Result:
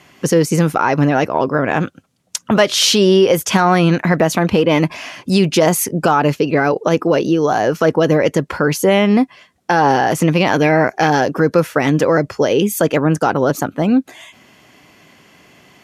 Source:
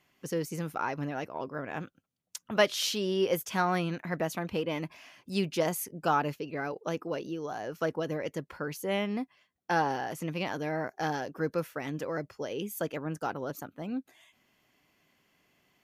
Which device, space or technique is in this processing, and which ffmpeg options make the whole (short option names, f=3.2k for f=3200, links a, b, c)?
mastering chain: -filter_complex "[0:a]highpass=56,lowpass=10k,equalizer=f=3.1k:t=o:w=2.2:g=-2,acompressor=threshold=-37dB:ratio=1.5,asoftclip=type=hard:threshold=-21dB,alimiter=level_in=26dB:limit=-1dB:release=50:level=0:latency=1,asettb=1/sr,asplit=3[a][b][c];[a]atrim=end=10.534[d];[b]atrim=start=10.53:end=11.1,asetpts=PTS-STARTPTS,afade=t=in:d=0.004:c=qsin,afade=t=out:st=0.566:d=0.004:c=qsin,equalizer=f=2.4k:t=o:w=0.47:g=8.5[e];[c]atrim=start=11.096[f];[d][e]acrossfade=d=0.004:c1=hsin:c2=qsin[g];[g][f]acrossfade=d=0.004:c1=qsin:c2=hsin,volume=-2.5dB"